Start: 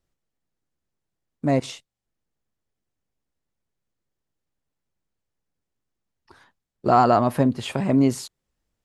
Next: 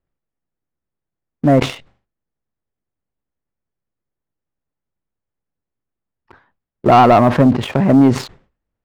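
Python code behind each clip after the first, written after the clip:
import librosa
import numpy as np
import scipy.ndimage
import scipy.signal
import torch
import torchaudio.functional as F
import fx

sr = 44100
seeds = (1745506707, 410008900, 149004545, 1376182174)

y = scipy.signal.sosfilt(scipy.signal.butter(2, 2000.0, 'lowpass', fs=sr, output='sos'), x)
y = fx.leveller(y, sr, passes=2)
y = fx.sustainer(y, sr, db_per_s=140.0)
y = F.gain(torch.from_numpy(y), 3.0).numpy()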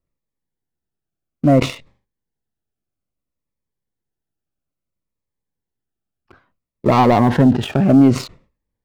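y = fx.notch_cascade(x, sr, direction='falling', hz=0.6)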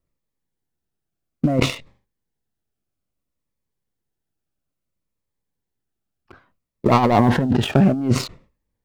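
y = fx.over_compress(x, sr, threshold_db=-14.0, ratio=-0.5)
y = F.gain(torch.from_numpy(y), -1.0).numpy()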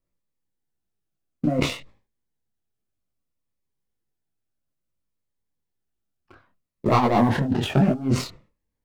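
y = fx.detune_double(x, sr, cents=35)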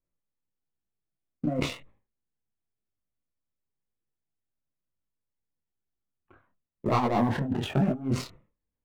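y = fx.wiener(x, sr, points=9)
y = F.gain(torch.from_numpy(y), -6.0).numpy()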